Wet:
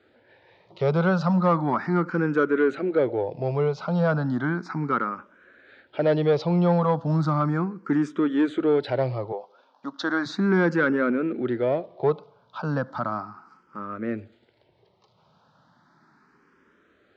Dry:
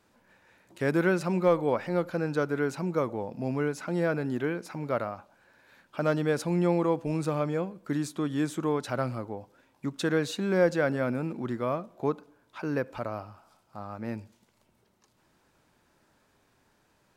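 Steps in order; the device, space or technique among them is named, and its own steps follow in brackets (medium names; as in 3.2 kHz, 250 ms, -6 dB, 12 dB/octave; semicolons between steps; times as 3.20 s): 9.32–10.26 s: Chebyshev band-pass 310–6400 Hz, order 3; barber-pole phaser into a guitar amplifier (barber-pole phaser +0.35 Hz; saturation -22 dBFS, distortion -19 dB; cabinet simulation 99–4500 Hz, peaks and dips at 160 Hz +3 dB, 400 Hz +3 dB, 1.3 kHz +5 dB, 2.6 kHz -6 dB); trim +8.5 dB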